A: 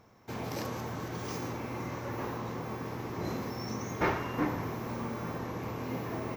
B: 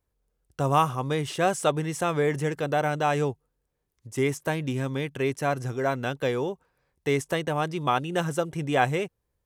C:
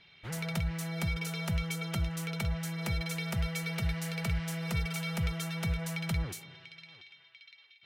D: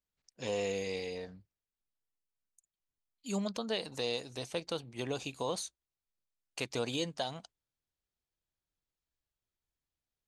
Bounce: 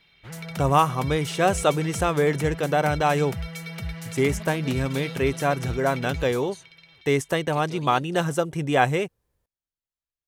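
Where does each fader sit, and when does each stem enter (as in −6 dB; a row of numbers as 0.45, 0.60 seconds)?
muted, +3.0 dB, −0.5 dB, −7.0 dB; muted, 0.00 s, 0.00 s, 0.95 s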